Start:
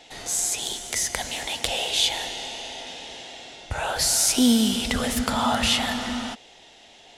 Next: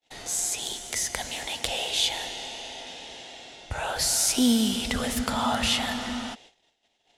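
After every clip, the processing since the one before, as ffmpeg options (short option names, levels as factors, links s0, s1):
-af "agate=range=0.0126:threshold=0.00447:ratio=16:detection=peak,volume=0.708"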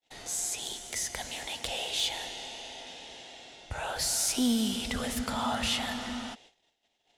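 -af "asoftclip=type=tanh:threshold=0.224,volume=0.596"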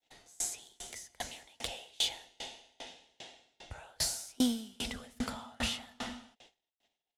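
-af "aeval=exprs='val(0)*pow(10,-33*if(lt(mod(2.5*n/s,1),2*abs(2.5)/1000),1-mod(2.5*n/s,1)/(2*abs(2.5)/1000),(mod(2.5*n/s,1)-2*abs(2.5)/1000)/(1-2*abs(2.5)/1000))/20)':c=same,volume=1.26"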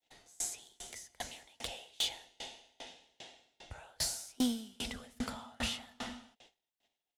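-af "asoftclip=type=hard:threshold=0.0708,volume=0.794"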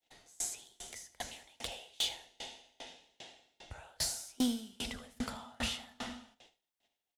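-af "aecho=1:1:77:0.158"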